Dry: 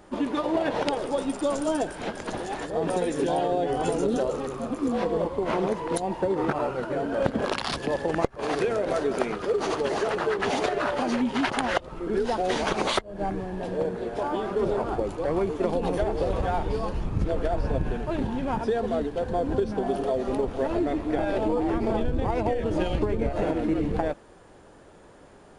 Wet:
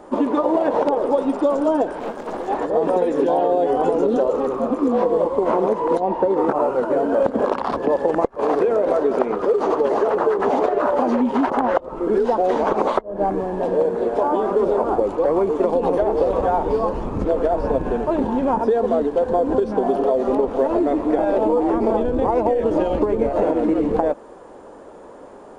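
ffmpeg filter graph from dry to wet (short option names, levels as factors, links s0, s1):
-filter_complex "[0:a]asettb=1/sr,asplit=3[s0][s1][s2];[s0]atrim=end=1.994[s3];[s1]atrim=start=1.99:end=2.48,asetpts=PTS-STARTPTS,afade=t=in:d=0.004:c=qsin,afade=t=out:st=0.486:d=0.004:c=qsin,acrusher=bits=2:mode=log:mix=0:aa=0.000001,aeval=exprs='(tanh(39.8*val(0)+0.8)-tanh(0.8))/39.8':c=same[s4];[s2]atrim=start=2.476[s5];[s3][s4]acrossfade=d=0.004:c1=hsin:c2=qsin[s6];[s6][s5]acrossfade=d=0.004:c1=qsin:c2=hsin,equalizer=f=125:t=o:w=1:g=-5,equalizer=f=250:t=o:w=1:g=8,equalizer=f=500:t=o:w=1:g=10,equalizer=f=1000:t=o:w=1:g=10,equalizer=f=8000:t=o:w=1:g=8,acrossover=split=1600|5100[s7][s8][s9];[s7]acompressor=threshold=0.178:ratio=4[s10];[s8]acompressor=threshold=0.00794:ratio=4[s11];[s9]acompressor=threshold=0.00178:ratio=4[s12];[s10][s11][s12]amix=inputs=3:normalize=0,highshelf=f=5900:g=-7.5"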